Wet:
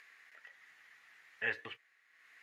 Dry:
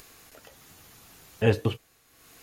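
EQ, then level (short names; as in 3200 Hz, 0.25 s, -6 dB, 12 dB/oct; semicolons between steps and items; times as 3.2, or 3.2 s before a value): band-pass 1900 Hz, Q 6.4; +6.0 dB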